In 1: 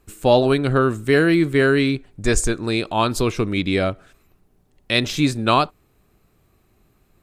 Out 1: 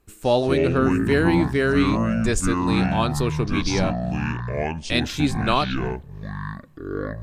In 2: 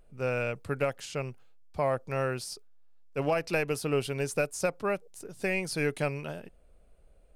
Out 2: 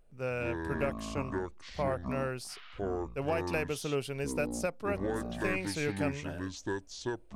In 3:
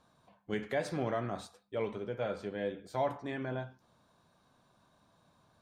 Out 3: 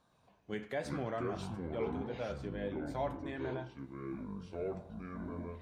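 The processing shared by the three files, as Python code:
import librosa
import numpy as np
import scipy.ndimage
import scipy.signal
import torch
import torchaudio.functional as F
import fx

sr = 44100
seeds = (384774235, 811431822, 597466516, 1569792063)

y = fx.echo_pitch(x, sr, ms=115, semitones=-7, count=2, db_per_echo=-3.0)
y = y * librosa.db_to_amplitude(-4.5)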